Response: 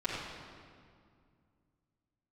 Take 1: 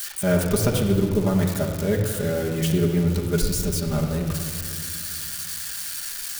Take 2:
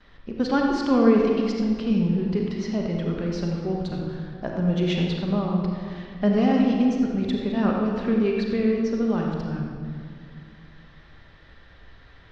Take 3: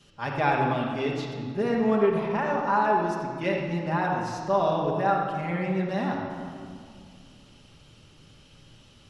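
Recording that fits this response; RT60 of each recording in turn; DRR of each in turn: 3; 2.2 s, 2.2 s, 2.2 s; -1.5 dB, -18.0 dB, -10.0 dB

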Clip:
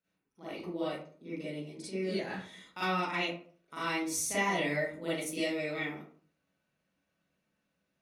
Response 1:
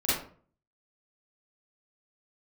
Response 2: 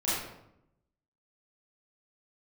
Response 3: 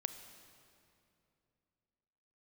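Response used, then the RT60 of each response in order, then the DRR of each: 1; 0.45 s, 0.80 s, 2.7 s; -11.5 dB, -11.0 dB, 9.0 dB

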